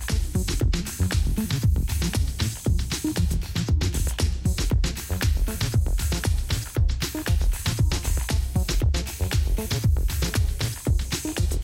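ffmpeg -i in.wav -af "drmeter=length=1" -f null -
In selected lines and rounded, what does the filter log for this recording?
Channel 1: DR: 6.8
Overall DR: 6.8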